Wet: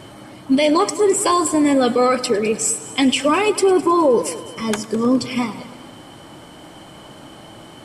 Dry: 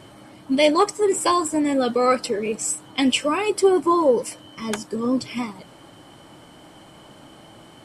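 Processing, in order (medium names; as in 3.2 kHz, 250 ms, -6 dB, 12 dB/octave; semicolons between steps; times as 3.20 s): peak limiter -14 dBFS, peak gain reduction 7 dB; on a send: multi-head delay 104 ms, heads first and second, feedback 49%, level -19 dB; on the sum: trim +6 dB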